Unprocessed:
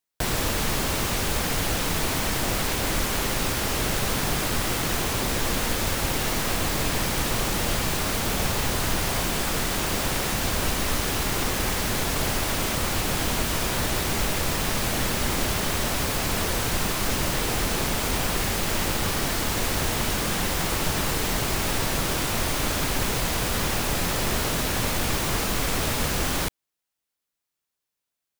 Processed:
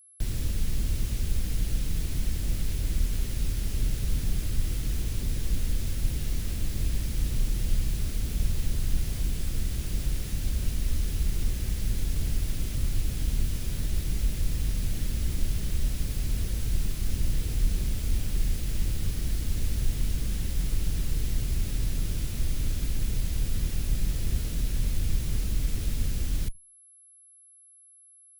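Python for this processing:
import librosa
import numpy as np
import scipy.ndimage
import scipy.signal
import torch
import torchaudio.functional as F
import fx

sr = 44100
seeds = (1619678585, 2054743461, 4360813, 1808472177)

y = fx.octave_divider(x, sr, octaves=2, level_db=0.0)
y = fx.tone_stack(y, sr, knobs='10-0-1')
y = y + 10.0 ** (-60.0 / 20.0) * np.sin(2.0 * np.pi * 11000.0 * np.arange(len(y)) / sr)
y = y * 10.0 ** (7.5 / 20.0)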